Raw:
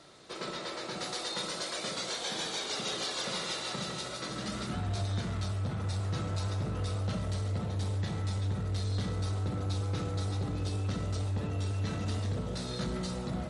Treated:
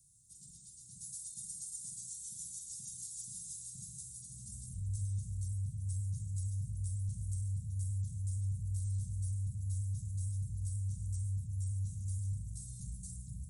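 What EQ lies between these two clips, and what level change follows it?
inverse Chebyshev band-stop 500–1900 Hz, stop band 80 dB; low shelf 220 Hz -11 dB; bell 4400 Hz -10 dB 0.96 oct; +7.0 dB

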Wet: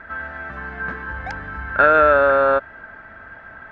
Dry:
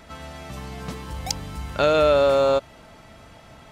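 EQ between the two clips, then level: synth low-pass 1600 Hz, resonance Q 16; bell 140 Hz -7.5 dB 0.55 oct; 0.0 dB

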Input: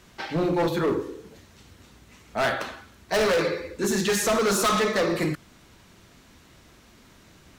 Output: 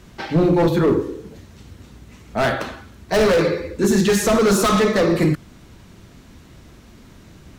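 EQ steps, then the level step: low shelf 410 Hz +9.5 dB; +2.5 dB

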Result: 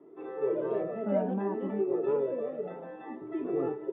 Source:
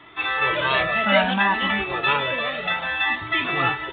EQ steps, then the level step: HPF 170 Hz 24 dB/oct; synth low-pass 420 Hz, resonance Q 4.9; -7.0 dB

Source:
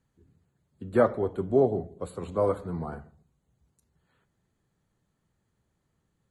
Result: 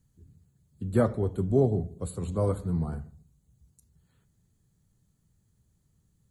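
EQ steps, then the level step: tone controls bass +15 dB, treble +15 dB; bell 440 Hz +2.5 dB 0.2 oct; -6.0 dB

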